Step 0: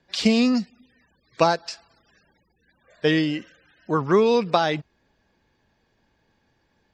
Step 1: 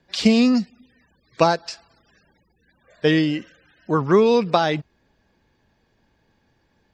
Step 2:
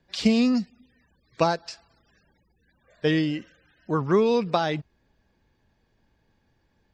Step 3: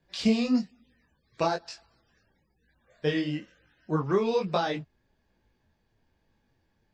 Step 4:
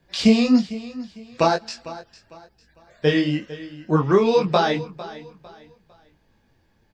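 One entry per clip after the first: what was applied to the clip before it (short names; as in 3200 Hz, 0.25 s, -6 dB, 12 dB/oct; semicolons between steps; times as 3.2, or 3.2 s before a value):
low shelf 400 Hz +3 dB; gain +1 dB
low shelf 98 Hz +7 dB; gain -5.5 dB
detuned doubles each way 38 cents
feedback echo 0.452 s, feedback 32%, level -16.5 dB; gain +8.5 dB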